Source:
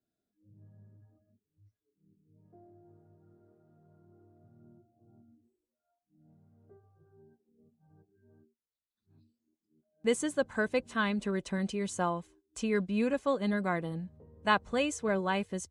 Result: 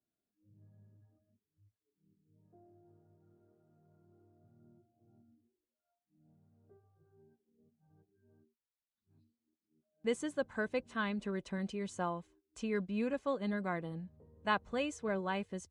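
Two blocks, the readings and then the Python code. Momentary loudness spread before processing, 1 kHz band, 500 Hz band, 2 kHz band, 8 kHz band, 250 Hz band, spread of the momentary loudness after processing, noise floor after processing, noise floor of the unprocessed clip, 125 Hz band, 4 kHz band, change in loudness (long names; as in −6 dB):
7 LU, −5.5 dB, −5.5 dB, −6.0 dB, −10.5 dB, −5.5 dB, 8 LU, below −85 dBFS, below −85 dBFS, −5.5 dB, −7.0 dB, −5.5 dB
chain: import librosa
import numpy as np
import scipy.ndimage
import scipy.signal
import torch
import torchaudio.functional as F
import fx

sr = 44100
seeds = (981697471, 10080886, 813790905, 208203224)

y = fx.high_shelf(x, sr, hz=8700.0, db=-12.0)
y = F.gain(torch.from_numpy(y), -5.5).numpy()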